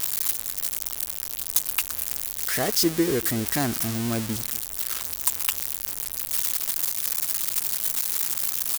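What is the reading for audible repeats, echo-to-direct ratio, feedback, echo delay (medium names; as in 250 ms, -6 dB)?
1, -22.5 dB, no regular repeats, 235 ms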